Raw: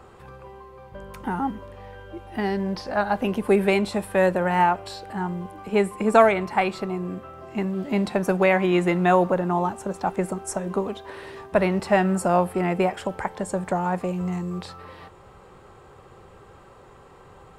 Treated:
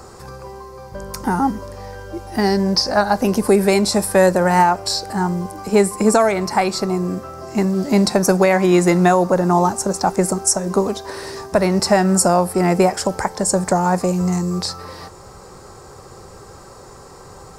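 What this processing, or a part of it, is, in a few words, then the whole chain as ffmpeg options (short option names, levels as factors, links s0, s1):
over-bright horn tweeter: -af "highshelf=f=4000:t=q:w=3:g=9,alimiter=limit=0.237:level=0:latency=1:release=323,volume=2.66"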